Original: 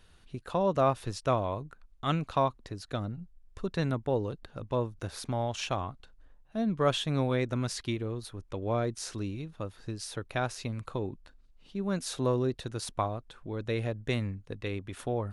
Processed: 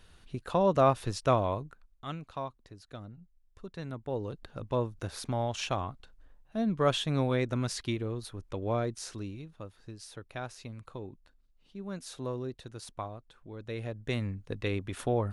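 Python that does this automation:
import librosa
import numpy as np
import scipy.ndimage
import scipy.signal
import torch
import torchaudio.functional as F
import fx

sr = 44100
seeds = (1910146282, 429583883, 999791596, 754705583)

y = fx.gain(x, sr, db=fx.line((1.52, 2.0), (2.15, -10.5), (3.83, -10.5), (4.45, 0.0), (8.65, 0.0), (9.81, -8.0), (13.6, -8.0), (14.56, 3.0)))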